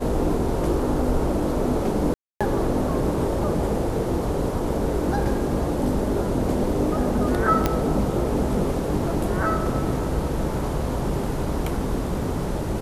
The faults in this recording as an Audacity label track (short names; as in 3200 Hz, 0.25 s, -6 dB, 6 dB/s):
2.140000	2.410000	gap 0.266 s
7.660000	7.660000	pop -6 dBFS